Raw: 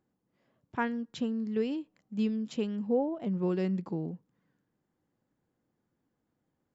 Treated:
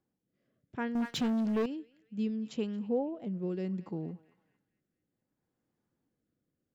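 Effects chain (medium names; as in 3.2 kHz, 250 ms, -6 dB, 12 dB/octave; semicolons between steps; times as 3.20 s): band-passed feedback delay 226 ms, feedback 56%, band-pass 1.9 kHz, level -17 dB; rotary cabinet horn 0.65 Hz; 0.95–1.66 s: waveshaping leveller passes 3; trim -2 dB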